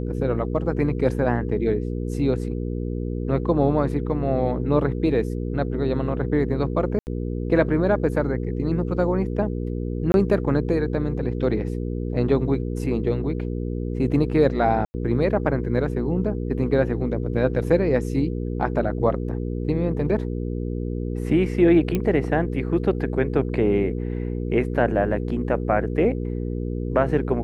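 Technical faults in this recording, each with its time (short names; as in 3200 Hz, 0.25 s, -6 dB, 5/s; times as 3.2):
hum 60 Hz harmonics 8 -27 dBFS
6.99–7.07 gap 79 ms
10.12–10.14 gap 21 ms
14.85–14.94 gap 90 ms
21.95 pop -11 dBFS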